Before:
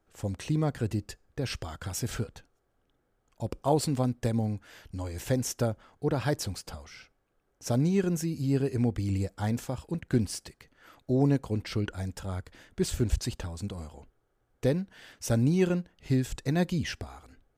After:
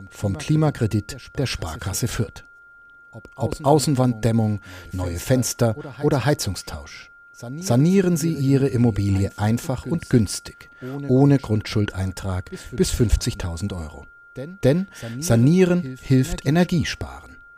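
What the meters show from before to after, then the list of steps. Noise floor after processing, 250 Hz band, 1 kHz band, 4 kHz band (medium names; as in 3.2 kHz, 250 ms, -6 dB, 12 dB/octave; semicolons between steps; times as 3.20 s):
-48 dBFS, +9.0 dB, +9.5 dB, +9.0 dB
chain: whistle 1.4 kHz -53 dBFS; pre-echo 274 ms -16 dB; trim +9 dB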